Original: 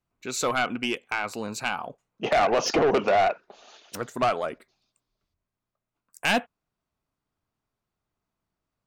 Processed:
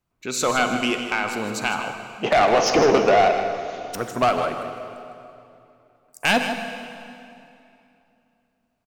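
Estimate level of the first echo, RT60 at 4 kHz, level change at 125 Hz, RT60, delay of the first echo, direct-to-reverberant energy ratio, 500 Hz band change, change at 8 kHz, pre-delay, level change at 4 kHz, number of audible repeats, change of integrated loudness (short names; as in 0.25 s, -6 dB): -10.0 dB, 2.3 s, +5.5 dB, 2.8 s, 0.156 s, 5.0 dB, +5.0 dB, +5.0 dB, 35 ms, +5.0 dB, 1, +4.0 dB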